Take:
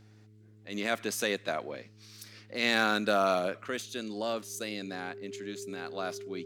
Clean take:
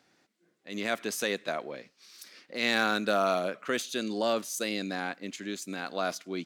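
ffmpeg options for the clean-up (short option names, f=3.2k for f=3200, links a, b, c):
-af "bandreject=f=106.7:t=h:w=4,bandreject=f=213.4:t=h:w=4,bandreject=f=320.1:t=h:w=4,bandreject=f=426.8:t=h:w=4,bandreject=f=400:w=30,asetnsamples=n=441:p=0,asendcmd='3.66 volume volume 5dB',volume=0dB"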